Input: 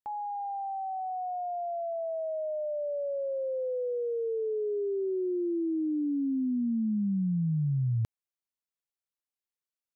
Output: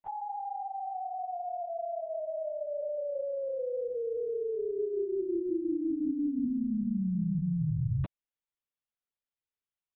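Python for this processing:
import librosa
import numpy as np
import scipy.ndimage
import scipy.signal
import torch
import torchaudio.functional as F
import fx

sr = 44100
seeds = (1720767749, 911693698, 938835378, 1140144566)

y = fx.room_flutter(x, sr, wall_m=10.5, rt60_s=0.38, at=(4.65, 6.5))
y = fx.lpc_vocoder(y, sr, seeds[0], excitation='whisper', order=16)
y = F.gain(torch.from_numpy(y), -2.0).numpy()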